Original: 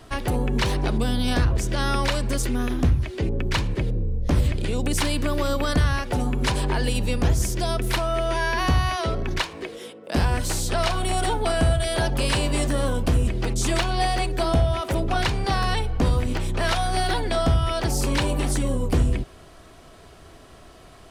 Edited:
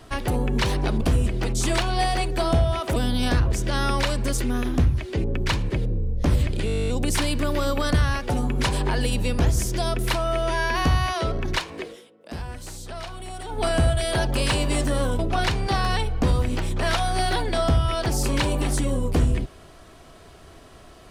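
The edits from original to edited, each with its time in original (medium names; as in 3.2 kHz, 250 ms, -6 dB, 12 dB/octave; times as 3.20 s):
4.71 s: stutter 0.02 s, 12 plays
9.69–11.47 s: dip -12 dB, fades 0.16 s
13.02–14.97 s: move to 1.01 s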